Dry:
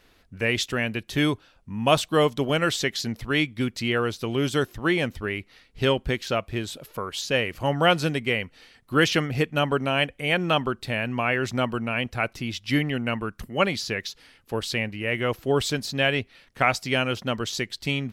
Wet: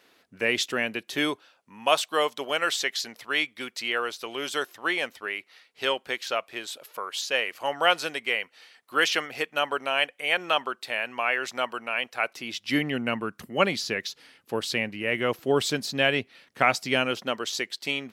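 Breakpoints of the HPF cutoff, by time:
0.8 s 270 Hz
1.91 s 610 Hz
12.16 s 610 Hz
12.95 s 180 Hz
16.97 s 180 Hz
17.39 s 380 Hz

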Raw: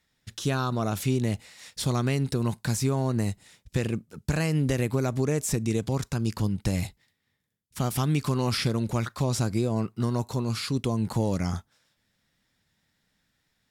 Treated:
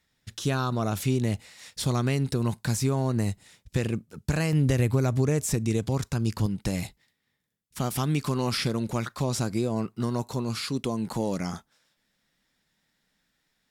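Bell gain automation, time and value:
bell 91 Hz
+1 dB
from 4.53 s +11 dB
from 5.46 s +2.5 dB
from 6.46 s -6.5 dB
from 10.65 s -14 dB

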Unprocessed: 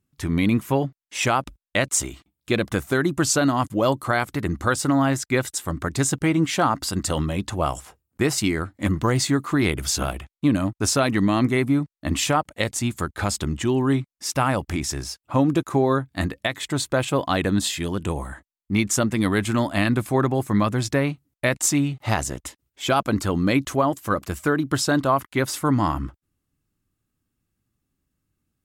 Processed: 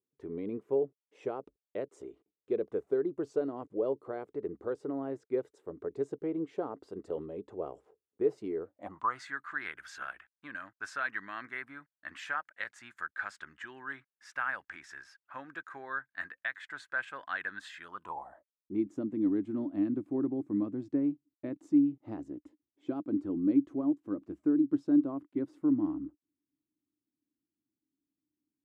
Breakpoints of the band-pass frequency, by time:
band-pass, Q 7.3
8.61 s 430 Hz
9.23 s 1600 Hz
17.78 s 1600 Hz
18.84 s 300 Hz

